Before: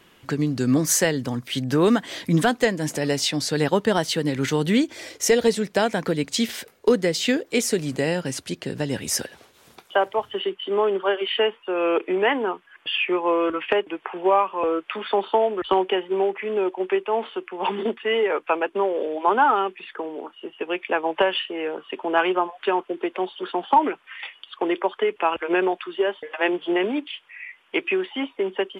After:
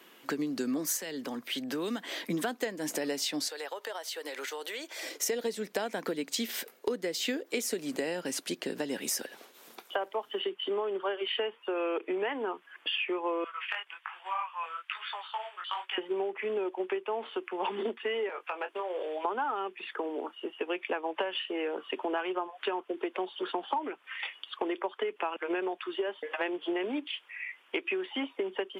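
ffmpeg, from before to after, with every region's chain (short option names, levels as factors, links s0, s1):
-filter_complex "[0:a]asettb=1/sr,asplit=3[s0][s1][s2];[s0]atrim=end=0.974[s3];[s1]atrim=start=0.97:end=2.3,asetpts=PTS-STARTPTS,afade=t=in:d=0.004:c=qsin,afade=t=out:st=1.326:d=0.004:c=qsin,bass=f=250:g=-7,treble=f=4000:g=-6,acrossover=split=210|3000[s4][s5][s6];[s5]acompressor=threshold=0.02:ratio=3:attack=3.2:release=140:knee=2.83:detection=peak[s7];[s4][s7][s6]amix=inputs=3:normalize=0[s8];[s2]atrim=start=2.296[s9];[s3][s8]acrossfade=d=0.004:c1=hsin:c2=qsin[s10];[s10][s9]acrossfade=d=0.004:c1=qsin:c2=hsin,asettb=1/sr,asplit=3[s11][s12][s13];[s11]atrim=end=3.484[s14];[s12]atrim=start=3.48:end=5.03,asetpts=PTS-STARTPTS,afade=t=in:d=0.004:c=qsin,afade=t=out:st=1.546:d=0.004:c=qsin,highpass=f=500:w=0.5412,highpass=f=500:w=1.3066,acompressor=threshold=0.0224:ratio=8:attack=3.2:release=140:knee=1:detection=peak[s15];[s13]atrim=start=5.026[s16];[s14][s15]acrossfade=d=0.004:c1=hsin:c2=qsin[s17];[s17][s16]acrossfade=d=0.004:c1=qsin:c2=hsin,asettb=1/sr,asplit=3[s18][s19][s20];[s18]atrim=end=13.444[s21];[s19]atrim=start=13.44:end=15.98,asetpts=PTS-STARTPTS,afade=t=in:d=0.004:c=qsin,afade=t=out:st=2.536:d=0.004:c=qsin,highpass=f=1100:w=0.5412,highpass=f=1100:w=1.3066,flanger=delay=16:depth=8:speed=1.2[s22];[s20]atrim=start=15.976[s23];[s21][s22]acrossfade=d=0.004:c1=hsin:c2=qsin[s24];[s24][s23]acrossfade=d=0.004:c1=qsin:c2=hsin,asettb=1/sr,asplit=3[s25][s26][s27];[s25]atrim=end=18.294[s28];[s26]atrim=start=18.29:end=19.25,asetpts=PTS-STARTPTS,afade=t=in:d=0.004:c=qsin,afade=t=out:st=0.956:d=0.004:c=qsin,highpass=650,acompressor=threshold=0.0355:ratio=4:attack=3.2:release=140:knee=1:detection=peak,asplit=2[s29][s30];[s30]adelay=22,volume=0.355[s31];[s29][s31]amix=inputs=2:normalize=0,atrim=end_sample=42336[s32];[s27]atrim=start=19.246[s33];[s28][s32]acrossfade=d=0.004:c1=hsin:c2=qsin[s34];[s34][s33]acrossfade=d=0.004:c1=qsin:c2=hsin,highpass=f=230:w=0.5412,highpass=f=230:w=1.3066,equalizer=f=14000:t=o:w=0.26:g=11,acompressor=threshold=0.0398:ratio=6,volume=0.841"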